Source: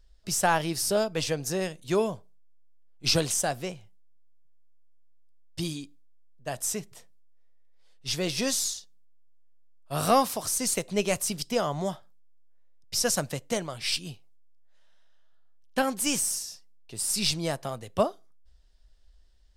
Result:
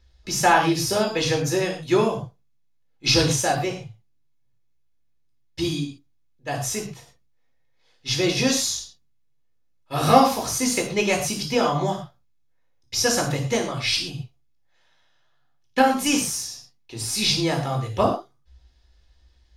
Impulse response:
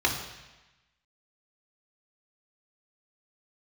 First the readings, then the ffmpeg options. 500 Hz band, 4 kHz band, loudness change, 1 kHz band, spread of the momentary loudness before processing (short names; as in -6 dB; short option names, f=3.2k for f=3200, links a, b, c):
+5.5 dB, +6.5 dB, +5.5 dB, +8.0 dB, 14 LU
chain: -filter_complex "[1:a]atrim=start_sample=2205,atrim=end_sample=6174[a];[0:a][a]afir=irnorm=-1:irlink=0,volume=-4.5dB"